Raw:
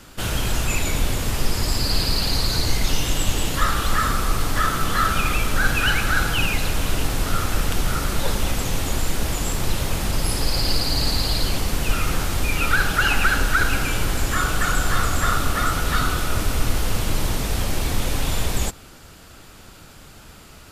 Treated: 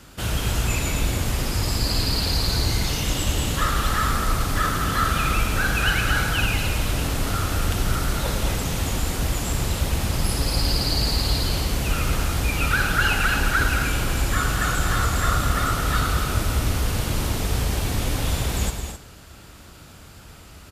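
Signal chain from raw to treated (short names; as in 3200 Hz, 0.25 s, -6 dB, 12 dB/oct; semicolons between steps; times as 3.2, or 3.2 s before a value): HPF 51 Hz 12 dB/oct; low shelf 91 Hz +8.5 dB; loudspeakers at several distances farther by 37 m -11 dB, 75 m -9 dB, 90 m -11 dB; on a send at -13.5 dB: reverb RT60 0.80 s, pre-delay 10 ms; on the sum: gain -2.5 dB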